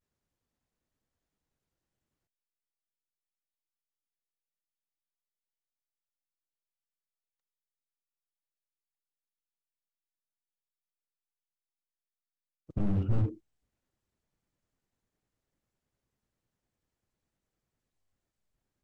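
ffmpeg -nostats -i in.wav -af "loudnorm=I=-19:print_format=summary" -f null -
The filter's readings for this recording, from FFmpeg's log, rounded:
Input Integrated:    -32.3 LUFS
Input True Peak:     -16.3 dBTP
Input LRA:             3.6 LU
Input Threshold:     -43.2 LUFS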